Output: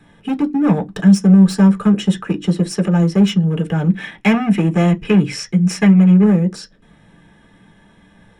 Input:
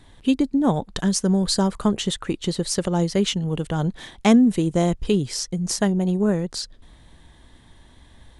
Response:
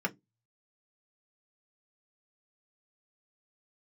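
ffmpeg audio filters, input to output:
-filter_complex "[0:a]volume=18dB,asoftclip=hard,volume=-18dB,asettb=1/sr,asplit=3[a][b][c];[a]atrim=end=3.904[d];[b]atrim=start=3.9:end=6.24,asetpts=PTS-STARTPTS,afade=t=in:d=0.004:c=qsin,afade=t=out:st=2.336:d=0.004:c=qsin,equalizer=f=2.3k:t=o:w=1.1:g=11[e];[c]atrim=start=6.236[f];[d][e]acrossfade=d=0.004:c1=hsin:c2=qsin[g];[g][f]acrossfade=d=0.004:c1=qsin:c2=hsin[h];[1:a]atrim=start_sample=2205[i];[h][i]afir=irnorm=-1:irlink=0,volume=-2dB"

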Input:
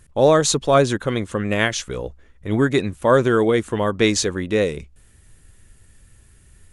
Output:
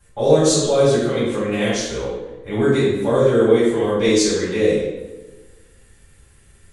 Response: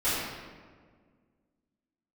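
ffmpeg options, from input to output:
-filter_complex "[0:a]lowshelf=f=150:g=-10,acrossover=split=530|3500[a][b][c];[b]acompressor=threshold=-31dB:ratio=4[d];[a][d][c]amix=inputs=3:normalize=0[e];[1:a]atrim=start_sample=2205,asetrate=70560,aresample=44100[f];[e][f]afir=irnorm=-1:irlink=0,volume=-4dB"

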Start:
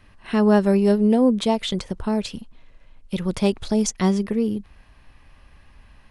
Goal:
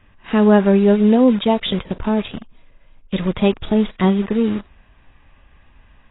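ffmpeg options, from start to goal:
-filter_complex "[0:a]asplit=2[a][b];[b]acrusher=bits=4:mix=0:aa=0.000001,volume=-4dB[c];[a][c]amix=inputs=2:normalize=0" -ar 16000 -c:a aac -b:a 16k

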